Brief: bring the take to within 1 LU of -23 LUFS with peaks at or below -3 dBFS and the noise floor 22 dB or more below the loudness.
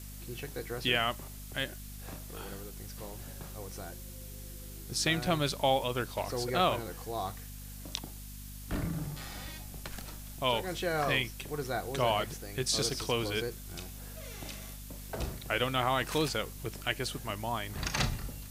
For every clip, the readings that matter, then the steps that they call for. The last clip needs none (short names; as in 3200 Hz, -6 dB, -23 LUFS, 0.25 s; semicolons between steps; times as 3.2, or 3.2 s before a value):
hum 50 Hz; harmonics up to 250 Hz; hum level -43 dBFS; noise floor -45 dBFS; noise floor target -56 dBFS; loudness -33.5 LUFS; peak -11.5 dBFS; loudness target -23.0 LUFS
-> de-hum 50 Hz, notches 5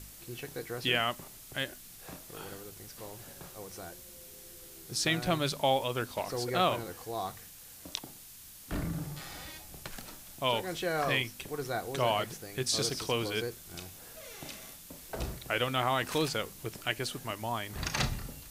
hum none; noise floor -51 dBFS; noise floor target -56 dBFS
-> denoiser 6 dB, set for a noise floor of -51 dBFS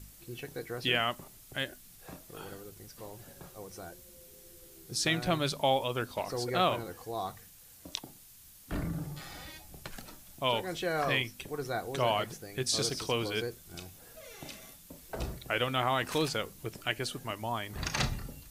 noise floor -55 dBFS; loudness -33.0 LUFS; peak -11.5 dBFS; loudness target -23.0 LUFS
-> gain +10 dB; limiter -3 dBFS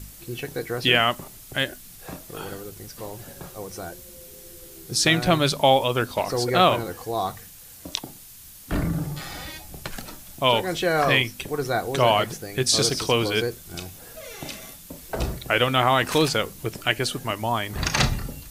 loudness -23.0 LUFS; peak -3.0 dBFS; noise floor -45 dBFS